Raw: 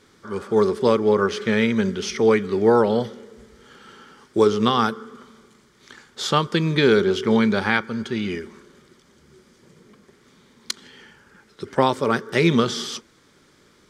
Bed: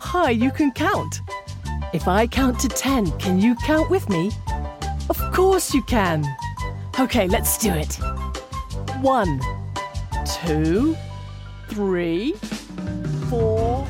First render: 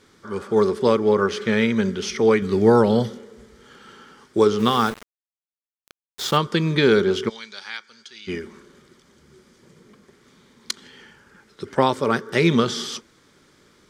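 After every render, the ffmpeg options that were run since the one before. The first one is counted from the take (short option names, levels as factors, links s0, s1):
-filter_complex "[0:a]asettb=1/sr,asplit=3[s0][s1][s2];[s0]atrim=end=2.424[s3];[s1]atrim=start=2.42:end=3.18,asetpts=PTS-STARTPTS,afade=t=in:d=0.004:c=qsin,afade=t=out:st=0.756:d=0.004:c=qsin,bass=f=250:g=7,treble=f=4000:g=6[s4];[s2]atrim=start=3.176[s5];[s3][s4]acrossfade=d=0.004:c1=hsin:c2=qsin[s6];[s6][s5]acrossfade=d=0.004:c1=qsin:c2=hsin,asplit=3[s7][s8][s9];[s7]afade=t=out:st=4.58:d=0.02[s10];[s8]aeval=exprs='val(0)*gte(abs(val(0)),0.0299)':c=same,afade=t=in:st=4.58:d=0.02,afade=t=out:st=6.36:d=0.02[s11];[s9]afade=t=in:st=6.36:d=0.02[s12];[s10][s11][s12]amix=inputs=3:normalize=0,asplit=3[s13][s14][s15];[s13]afade=t=out:st=7.28:d=0.02[s16];[s14]bandpass=f=5200:t=q:w=1.5,afade=t=in:st=7.28:d=0.02,afade=t=out:st=8.27:d=0.02[s17];[s15]afade=t=in:st=8.27:d=0.02[s18];[s16][s17][s18]amix=inputs=3:normalize=0"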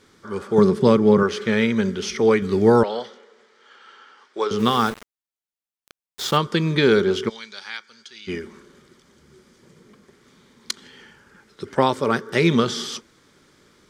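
-filter_complex "[0:a]asettb=1/sr,asplit=3[s0][s1][s2];[s0]atrim=end=0.584[s3];[s1]atrim=start=0.58:end=1.23,asetpts=PTS-STARTPTS,afade=t=in:d=0.004:c=qsin,afade=t=out:st=0.646:d=0.004:c=qsin,equalizer=f=160:w=1.5:g=14.5[s4];[s2]atrim=start=1.226[s5];[s3][s4]acrossfade=d=0.004:c1=hsin:c2=qsin[s6];[s6][s5]acrossfade=d=0.004:c1=qsin:c2=hsin,asettb=1/sr,asplit=3[s7][s8][s9];[s7]atrim=end=2.834[s10];[s8]atrim=start=2.83:end=4.51,asetpts=PTS-STARTPTS,afade=t=in:d=0.004:c=qsin,afade=t=out:st=1.676:d=0.004:c=qsin,highpass=660,lowpass=4600[s11];[s9]atrim=start=4.506[s12];[s10][s11]acrossfade=d=0.004:c1=hsin:c2=qsin[s13];[s13][s12]acrossfade=d=0.004:c1=qsin:c2=hsin"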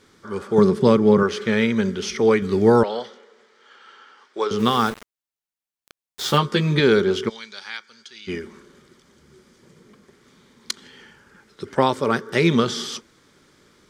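-filter_complex "[0:a]asettb=1/sr,asplit=3[s0][s1][s2];[s0]atrim=end=6.234[s3];[s1]atrim=start=6.23:end=6.8,asetpts=PTS-STARTPTS,afade=t=in:d=0.004:c=qsin,afade=t=out:st=0.566:d=0.004:c=qsin,asplit=2[s4][s5];[s5]adelay=14,volume=0.631[s6];[s4][s6]amix=inputs=2:normalize=0,atrim=end_sample=25137[s7];[s2]atrim=start=6.796[s8];[s3][s7]acrossfade=d=0.004:c1=hsin:c2=qsin[s9];[s9][s8]acrossfade=d=0.004:c1=qsin:c2=hsin"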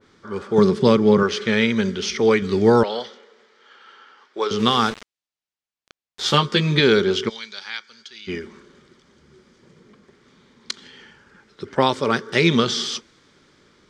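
-af "lowpass=5800,adynamicequalizer=threshold=0.0158:dfrequency=2200:dqfactor=0.7:tfrequency=2200:tqfactor=0.7:attack=5:release=100:ratio=0.375:range=3.5:mode=boostabove:tftype=highshelf"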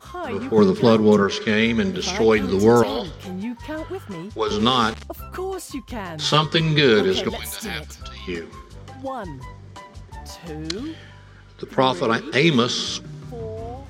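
-filter_complex "[1:a]volume=0.251[s0];[0:a][s0]amix=inputs=2:normalize=0"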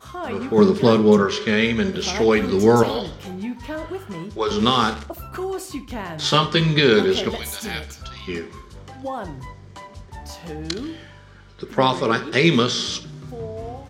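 -filter_complex "[0:a]asplit=2[s0][s1];[s1]adelay=24,volume=0.251[s2];[s0][s2]amix=inputs=2:normalize=0,asplit=2[s3][s4];[s4]adelay=68,lowpass=f=4400:p=1,volume=0.2,asplit=2[s5][s6];[s6]adelay=68,lowpass=f=4400:p=1,volume=0.41,asplit=2[s7][s8];[s8]adelay=68,lowpass=f=4400:p=1,volume=0.41,asplit=2[s9][s10];[s10]adelay=68,lowpass=f=4400:p=1,volume=0.41[s11];[s3][s5][s7][s9][s11]amix=inputs=5:normalize=0"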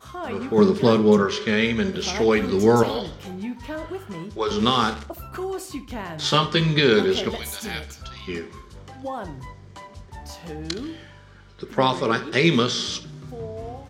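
-af "volume=0.794"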